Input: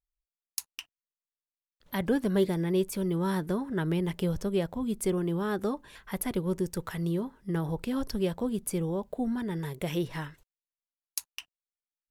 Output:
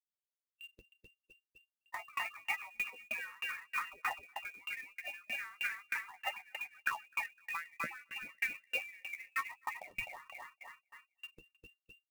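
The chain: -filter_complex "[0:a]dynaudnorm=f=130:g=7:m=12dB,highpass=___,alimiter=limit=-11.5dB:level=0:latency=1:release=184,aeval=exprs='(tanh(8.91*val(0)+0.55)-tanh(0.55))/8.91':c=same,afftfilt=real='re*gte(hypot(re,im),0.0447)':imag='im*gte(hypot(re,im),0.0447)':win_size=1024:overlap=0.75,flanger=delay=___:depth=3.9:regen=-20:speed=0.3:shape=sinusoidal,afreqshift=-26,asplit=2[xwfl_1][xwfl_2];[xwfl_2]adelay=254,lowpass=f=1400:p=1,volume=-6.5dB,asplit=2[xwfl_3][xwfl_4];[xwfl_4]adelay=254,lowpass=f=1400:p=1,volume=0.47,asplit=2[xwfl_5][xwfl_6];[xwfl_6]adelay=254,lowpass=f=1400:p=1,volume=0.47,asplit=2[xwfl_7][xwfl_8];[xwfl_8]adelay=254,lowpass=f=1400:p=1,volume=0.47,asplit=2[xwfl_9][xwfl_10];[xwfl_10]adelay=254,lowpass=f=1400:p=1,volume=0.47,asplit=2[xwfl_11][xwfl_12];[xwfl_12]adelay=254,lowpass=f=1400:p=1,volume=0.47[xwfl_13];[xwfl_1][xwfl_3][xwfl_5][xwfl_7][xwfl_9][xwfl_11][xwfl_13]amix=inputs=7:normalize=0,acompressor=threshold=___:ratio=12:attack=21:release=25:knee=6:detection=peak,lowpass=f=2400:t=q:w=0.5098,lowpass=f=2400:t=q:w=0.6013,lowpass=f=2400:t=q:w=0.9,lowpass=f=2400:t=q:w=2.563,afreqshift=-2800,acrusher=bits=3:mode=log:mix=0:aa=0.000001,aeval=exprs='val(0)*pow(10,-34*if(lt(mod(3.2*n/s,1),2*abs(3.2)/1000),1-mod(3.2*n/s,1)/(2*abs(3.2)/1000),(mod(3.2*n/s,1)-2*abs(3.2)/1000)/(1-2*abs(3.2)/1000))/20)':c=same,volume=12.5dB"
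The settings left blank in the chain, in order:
1100, 9.9, -44dB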